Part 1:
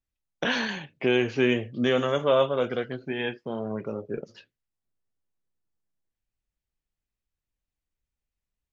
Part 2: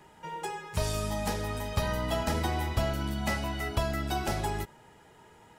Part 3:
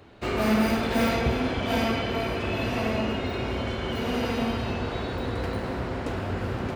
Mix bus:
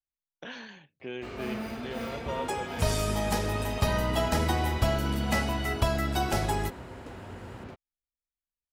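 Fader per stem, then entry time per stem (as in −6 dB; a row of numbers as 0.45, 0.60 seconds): −15.5, +3.0, −13.0 decibels; 0.00, 2.05, 1.00 seconds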